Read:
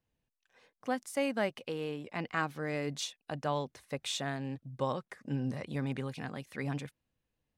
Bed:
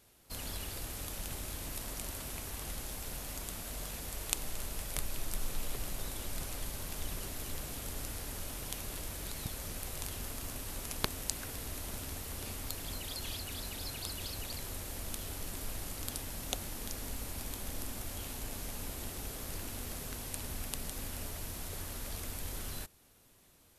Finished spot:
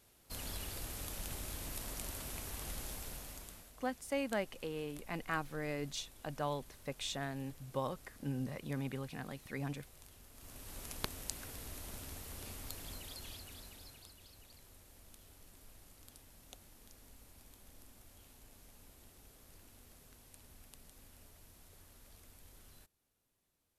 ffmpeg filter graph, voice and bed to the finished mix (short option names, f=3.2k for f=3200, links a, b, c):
-filter_complex "[0:a]adelay=2950,volume=-4.5dB[a];[1:a]volume=9.5dB,afade=t=out:st=2.89:d=0.84:silence=0.16788,afade=t=in:st=10.31:d=0.53:silence=0.251189,afade=t=out:st=12.81:d=1.34:silence=0.237137[b];[a][b]amix=inputs=2:normalize=0"